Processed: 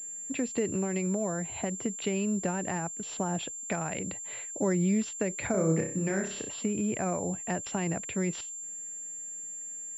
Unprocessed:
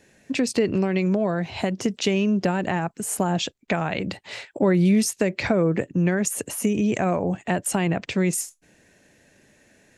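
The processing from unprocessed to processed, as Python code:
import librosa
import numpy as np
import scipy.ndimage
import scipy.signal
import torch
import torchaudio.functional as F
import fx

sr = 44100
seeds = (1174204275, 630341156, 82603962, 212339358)

y = fx.room_flutter(x, sr, wall_m=5.3, rt60_s=0.44, at=(5.51, 6.49))
y = fx.pwm(y, sr, carrier_hz=7300.0)
y = y * 10.0 ** (-8.5 / 20.0)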